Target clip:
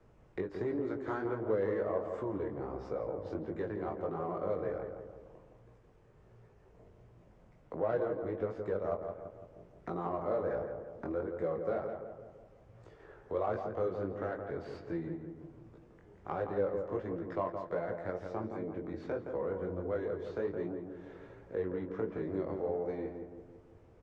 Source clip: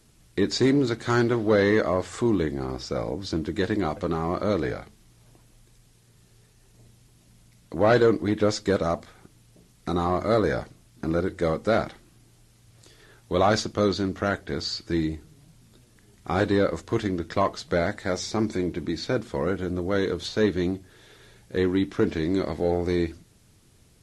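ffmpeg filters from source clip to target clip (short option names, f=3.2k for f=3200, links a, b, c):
-filter_complex "[0:a]acrossover=split=160|460|4400[a][b][c][d];[d]aeval=exprs='(mod(50.1*val(0)+1,2)-1)/50.1':c=same[e];[a][b][c][e]amix=inputs=4:normalize=0,equalizer=f=250:t=o:w=1:g=-4,equalizer=f=500:t=o:w=1:g=8,equalizer=f=1k:t=o:w=1:g=4,equalizer=f=4k:t=o:w=1:g=-11,acompressor=threshold=-41dB:ratio=2,flanger=delay=17.5:depth=4.6:speed=1.4,adynamicsmooth=sensitivity=4:basefreq=3.1k,lowpass=8.4k,asplit=2[f][g];[g]adelay=168,lowpass=f=1.5k:p=1,volume=-5.5dB,asplit=2[h][i];[i]adelay=168,lowpass=f=1.5k:p=1,volume=0.54,asplit=2[j][k];[k]adelay=168,lowpass=f=1.5k:p=1,volume=0.54,asplit=2[l][m];[m]adelay=168,lowpass=f=1.5k:p=1,volume=0.54,asplit=2[n][o];[o]adelay=168,lowpass=f=1.5k:p=1,volume=0.54,asplit=2[p][q];[q]adelay=168,lowpass=f=1.5k:p=1,volume=0.54,asplit=2[r][s];[s]adelay=168,lowpass=f=1.5k:p=1,volume=0.54[t];[f][h][j][l][n][p][r][t]amix=inputs=8:normalize=0"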